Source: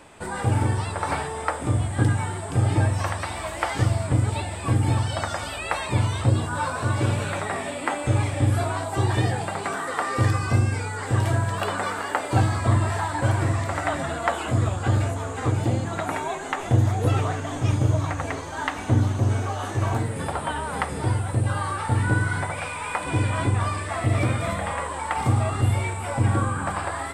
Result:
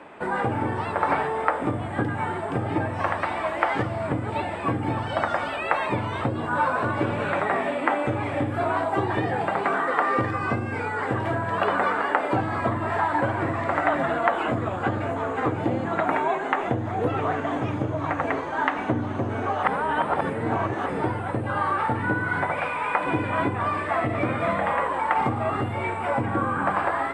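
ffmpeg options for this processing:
-filter_complex "[0:a]asplit=3[a][b][c];[a]atrim=end=19.632[d];[b]atrim=start=19.628:end=20.862,asetpts=PTS-STARTPTS,areverse[e];[c]atrim=start=20.858[f];[d][e]acrossfade=d=0.004:c1=hsin:c2=hsin[g];[g][f]acrossfade=d=0.004:c1=hsin:c2=hsin,acompressor=threshold=-21dB:ratio=6,acrossover=split=170 2700:gain=0.141 1 0.0708[h][i][j];[h][i][j]amix=inputs=3:normalize=0,volume=5.5dB"

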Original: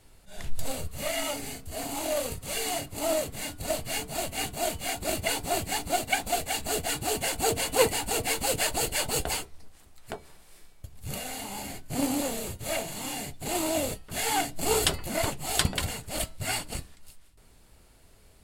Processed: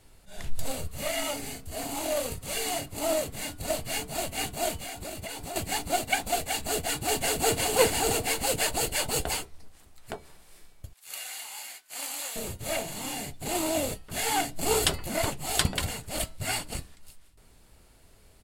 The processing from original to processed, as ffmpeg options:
-filter_complex "[0:a]asettb=1/sr,asplit=3[a][b][c];[a]atrim=end=4.774[d];[b]atrim=start=4.77:end=5.56,asetpts=PTS-STARTPTS,afade=t=in:d=0.004:c=qsin,afade=t=out:st=0.786:d=0.004:c=qsin,acompressor=threshold=-34dB:ratio=6:attack=3.2:release=140:knee=1:detection=peak[e];[c]atrim=start=5.556[f];[d][e]acrossfade=d=0.004:c1=hsin:c2=qsin[g];[g][f]acrossfade=d=0.004:c1=qsin:c2=hsin,asplit=2[h][i];[i]afade=t=in:st=6.5:d=0.01,afade=t=out:st=7.58:d=0.01,aecho=0:1:580|1160|1740:0.794328|0.158866|0.0317731[j];[h][j]amix=inputs=2:normalize=0,asettb=1/sr,asplit=3[k][l][m];[k]atrim=end=10.934[n];[l]atrim=start=10.93:end=12.36,asetpts=PTS-STARTPTS,afade=t=in:d=0.004:c=qsin,afade=t=out:st=1.426:d=0.004:c=qsin,highpass=1.3k[o];[m]atrim=start=12.356[p];[n][o]acrossfade=d=0.004:c1=hsin:c2=qsin[q];[q][p]acrossfade=d=0.004:c1=qsin:c2=hsin"

